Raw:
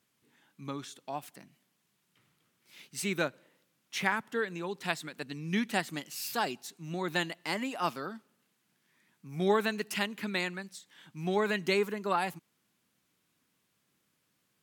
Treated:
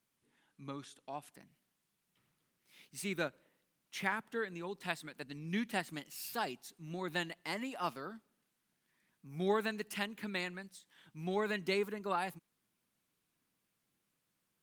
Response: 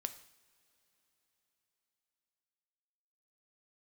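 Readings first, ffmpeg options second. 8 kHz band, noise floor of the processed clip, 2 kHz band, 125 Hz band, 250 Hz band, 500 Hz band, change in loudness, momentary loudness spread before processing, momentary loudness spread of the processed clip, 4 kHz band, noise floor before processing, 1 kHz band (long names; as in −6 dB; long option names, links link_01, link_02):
−7.5 dB, −83 dBFS, −6.0 dB, −5.5 dB, −5.5 dB, −5.5 dB, −6.0 dB, 14 LU, 14 LU, −6.5 dB, −77 dBFS, −6.0 dB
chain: -af "volume=-5.5dB" -ar 48000 -c:a libopus -b:a 32k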